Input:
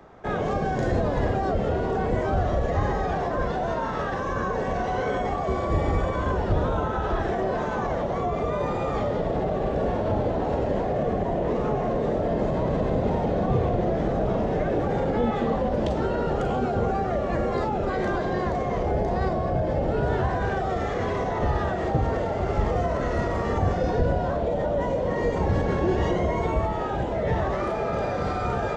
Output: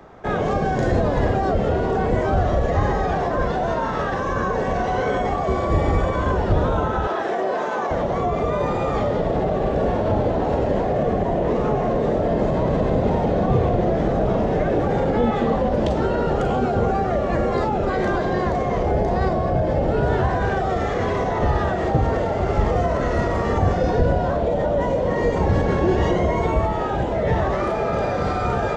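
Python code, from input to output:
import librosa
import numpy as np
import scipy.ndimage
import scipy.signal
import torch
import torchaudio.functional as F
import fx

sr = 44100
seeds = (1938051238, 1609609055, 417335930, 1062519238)

y = fx.highpass(x, sr, hz=340.0, slope=12, at=(7.07, 7.91))
y = F.gain(torch.from_numpy(y), 4.5).numpy()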